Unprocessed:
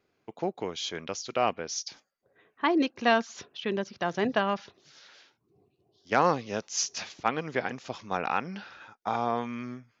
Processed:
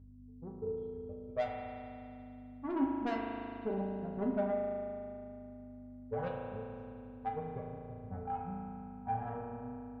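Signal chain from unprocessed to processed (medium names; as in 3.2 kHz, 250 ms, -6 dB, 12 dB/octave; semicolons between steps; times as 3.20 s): expander on every frequency bin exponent 2; peaking EQ 120 Hz +4.5 dB 0.29 oct; harmonic-percussive split percussive -10 dB; bass shelf 330 Hz +10.5 dB; level rider gain up to 16 dB; transient shaper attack +6 dB, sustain -9 dB; four-pole ladder low-pass 980 Hz, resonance 30%; hum 50 Hz, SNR 15 dB; valve stage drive 16 dB, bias 0.3; feedback comb 88 Hz, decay 0.2 s, harmonics odd, mix 90%; spring tank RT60 2.7 s, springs 36 ms, chirp 65 ms, DRR -0.5 dB; trim -4 dB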